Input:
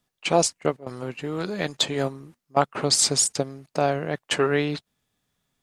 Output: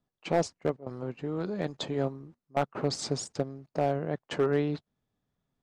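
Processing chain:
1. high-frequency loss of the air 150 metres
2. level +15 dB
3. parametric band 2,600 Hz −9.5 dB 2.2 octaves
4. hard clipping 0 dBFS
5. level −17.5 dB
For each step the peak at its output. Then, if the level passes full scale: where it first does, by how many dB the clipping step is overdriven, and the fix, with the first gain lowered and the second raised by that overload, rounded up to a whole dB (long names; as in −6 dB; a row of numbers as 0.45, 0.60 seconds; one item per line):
−6.0, +9.0, +7.0, 0.0, −17.5 dBFS
step 2, 7.0 dB
step 2 +8 dB, step 5 −10.5 dB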